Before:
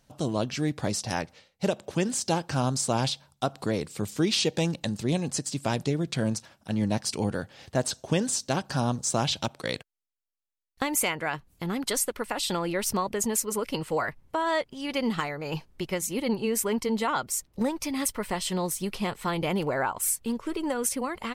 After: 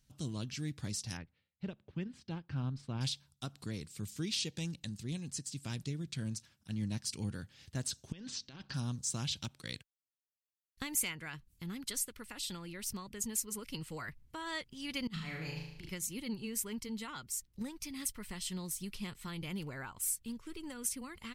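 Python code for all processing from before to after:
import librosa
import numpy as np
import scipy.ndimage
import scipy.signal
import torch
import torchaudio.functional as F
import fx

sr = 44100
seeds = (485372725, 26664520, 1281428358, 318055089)

y = fx.chain(x, sr, fx.transient(attack_db=-1, sustain_db=-7),
    fx.air_absorb(metres=400.0), at=(1.17, 3.01))
y = fx.chain(y, sr, fx.lowpass(hz=4500.0, slope=24),
    fx.low_shelf(hz=180.0, db=-8.0),
    fx.over_compress(threshold_db=-35.0, ratio=-1.0), at=(8.12, 8.74))
y = fx.chain(y, sr, fx.high_shelf(hz=11000.0, db=-10.0),
    fx.over_compress(threshold_db=-34.0, ratio=-0.5),
    fx.room_flutter(wall_m=6.4, rt60_s=0.85), at=(15.07, 15.89))
y = fx.tone_stack(y, sr, knobs='6-0-2')
y = fx.rider(y, sr, range_db=10, speed_s=2.0)
y = y * 10.0 ** (6.0 / 20.0)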